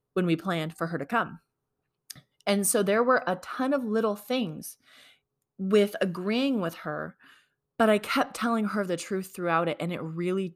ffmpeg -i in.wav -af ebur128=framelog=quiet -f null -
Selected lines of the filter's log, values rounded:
Integrated loudness:
  I:         -27.6 LUFS
  Threshold: -38.4 LUFS
Loudness range:
  LRA:         2.1 LU
  Threshold: -48.3 LUFS
  LRA low:   -29.6 LUFS
  LRA high:  -27.5 LUFS